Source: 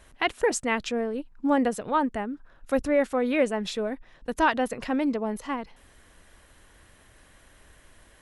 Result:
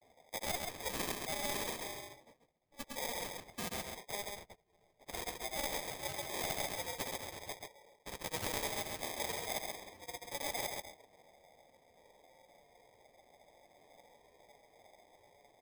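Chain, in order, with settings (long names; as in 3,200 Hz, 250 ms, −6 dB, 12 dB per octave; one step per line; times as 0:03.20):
spectral magnitudes quantised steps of 15 dB
comb filter 0.9 ms, depth 87%
time stretch by phase vocoder 1.9×
four-pole ladder high-pass 1,900 Hz, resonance 80%
noise gate −52 dBFS, range −20 dB
flanger 0.29 Hz, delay 4.7 ms, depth 9.2 ms, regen −53%
granular cloud, pitch spread up and down by 0 semitones
asymmetric clip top −35.5 dBFS
reversed playback
downward compressor 6 to 1, threshold −44 dBFS, peak gain reduction 15.5 dB
reversed playback
decimation without filtering 31×
on a send: single-tap delay 134 ms −8 dB
on the sum: every bin compressed towards the loudest bin 2 to 1
level +14.5 dB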